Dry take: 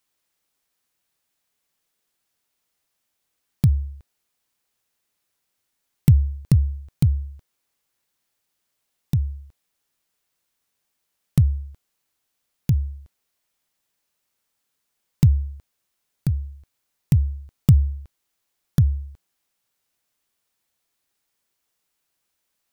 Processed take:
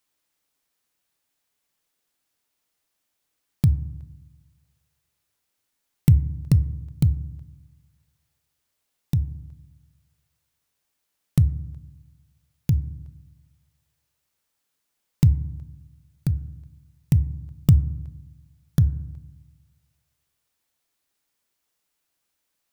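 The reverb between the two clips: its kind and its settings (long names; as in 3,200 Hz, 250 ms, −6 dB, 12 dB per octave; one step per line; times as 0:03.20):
feedback delay network reverb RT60 1 s, low-frequency decay 1.45×, high-frequency decay 0.3×, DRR 15 dB
level −1 dB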